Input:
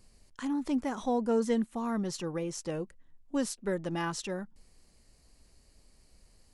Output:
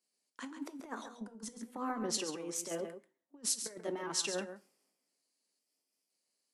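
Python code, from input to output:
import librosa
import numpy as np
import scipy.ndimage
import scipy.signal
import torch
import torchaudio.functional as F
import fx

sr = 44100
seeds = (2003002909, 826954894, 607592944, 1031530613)

y = fx.pitch_trill(x, sr, semitones=1.5, every_ms=508)
y = scipy.signal.sosfilt(scipy.signal.butter(4, 250.0, 'highpass', fs=sr, output='sos'), y)
y = fx.over_compress(y, sr, threshold_db=-37.0, ratio=-0.5)
y = y + 10.0 ** (-7.5 / 20.0) * np.pad(y, (int(138 * sr / 1000.0), 0))[:len(y)]
y = fx.rev_double_slope(y, sr, seeds[0], early_s=0.41, late_s=1.6, knee_db=-27, drr_db=13.0)
y = fx.band_widen(y, sr, depth_pct=70)
y = y * 10.0 ** (-4.0 / 20.0)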